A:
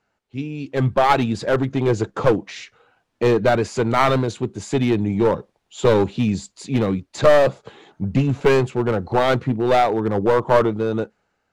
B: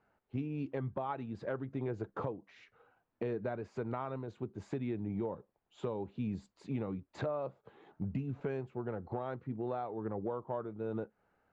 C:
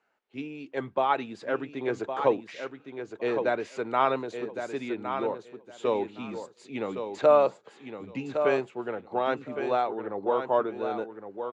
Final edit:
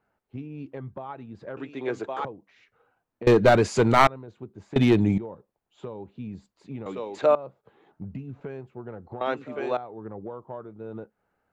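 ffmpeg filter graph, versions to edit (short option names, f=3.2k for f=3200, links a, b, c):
-filter_complex "[2:a]asplit=3[a][b][c];[0:a]asplit=2[d][e];[1:a]asplit=6[f][g][h][i][j][k];[f]atrim=end=1.572[l];[a]atrim=start=1.568:end=2.252[m];[g]atrim=start=2.248:end=3.272[n];[d]atrim=start=3.268:end=4.072[o];[h]atrim=start=4.068:end=4.762[p];[e]atrim=start=4.758:end=5.182[q];[i]atrim=start=5.178:end=6.862[r];[b]atrim=start=6.858:end=7.352[s];[j]atrim=start=7.348:end=9.212[t];[c]atrim=start=9.208:end=9.772[u];[k]atrim=start=9.768[v];[l][m]acrossfade=d=0.004:c1=hsin:c2=hsin[w];[w][n]acrossfade=d=0.004:c1=hsin:c2=hsin[x];[x][o]acrossfade=d=0.004:c1=hsin:c2=hsin[y];[y][p]acrossfade=d=0.004:c1=hsin:c2=hsin[z];[z][q]acrossfade=d=0.004:c1=hsin:c2=hsin[aa];[aa][r]acrossfade=d=0.004:c1=hsin:c2=hsin[ab];[ab][s]acrossfade=d=0.004:c1=hsin:c2=hsin[ac];[ac][t]acrossfade=d=0.004:c1=hsin:c2=hsin[ad];[ad][u]acrossfade=d=0.004:c1=hsin:c2=hsin[ae];[ae][v]acrossfade=d=0.004:c1=hsin:c2=hsin"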